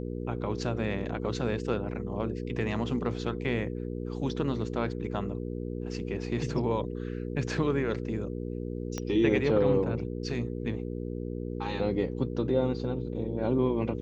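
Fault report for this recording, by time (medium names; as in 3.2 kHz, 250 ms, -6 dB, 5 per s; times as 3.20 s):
hum 60 Hz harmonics 8 -35 dBFS
8.98 s: pop -19 dBFS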